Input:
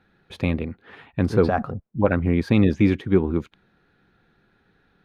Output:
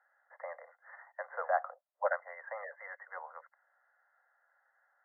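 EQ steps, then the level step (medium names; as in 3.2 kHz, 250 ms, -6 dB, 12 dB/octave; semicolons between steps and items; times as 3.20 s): steep high-pass 550 Hz 96 dB/octave; brick-wall FIR low-pass 2.1 kHz; -6.0 dB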